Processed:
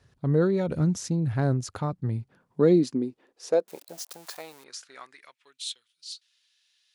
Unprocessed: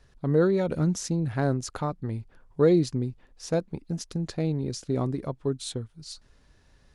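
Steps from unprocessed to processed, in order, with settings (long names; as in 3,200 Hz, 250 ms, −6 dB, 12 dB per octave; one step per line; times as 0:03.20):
0:03.67–0:04.64: spike at every zero crossing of −32.5 dBFS
high-pass filter sweep 98 Hz → 3,200 Hz, 0:01.84–0:05.75
level −2 dB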